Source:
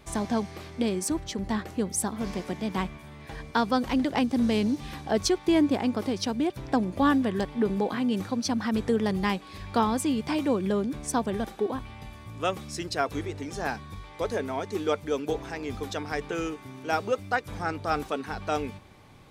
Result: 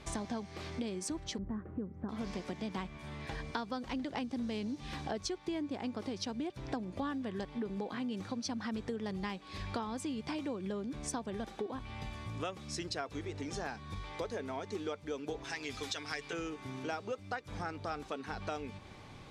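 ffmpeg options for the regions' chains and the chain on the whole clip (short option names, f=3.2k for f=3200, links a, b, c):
-filter_complex "[0:a]asettb=1/sr,asplit=3[a][b][c];[a]atrim=end=1.384[d];[b]atrim=start=1.38:end=2.09,asetpts=PTS-STARTPTS,afade=t=in:d=0.004:c=qsin,afade=t=out:st=0.706:d=0.004:c=qsin,lowpass=f=1.3k:w=0.5412,lowpass=f=1.3k:w=1.3066,equalizer=f=800:t=o:w=1.2:g=-11.5[e];[c]atrim=start=2.086[f];[d][e]acrossfade=d=0.004:c1=hsin:c2=qsin[g];[g][f]acrossfade=d=0.004:c1=qsin:c2=hsin,asettb=1/sr,asplit=3[h][i][j];[h]atrim=end=15.444[k];[i]atrim=start=15.44:end=16.33,asetpts=PTS-STARTPTS,afade=t=in:d=0.004:c=qsin,afade=t=out:st=0.886:d=0.004:c=qsin,tiltshelf=f=1.3k:g=-7.5,aecho=1:1:7.2:0.44,atrim=end_sample=39249[l];[j]atrim=start=16.326[m];[k][l]acrossfade=d=0.004:c1=hsin:c2=qsin[n];[n][m]acrossfade=d=0.004:c1=qsin:c2=hsin,lowpass=6.3k,highshelf=f=4.5k:g=5.5,acompressor=threshold=-38dB:ratio=5,volume=1dB"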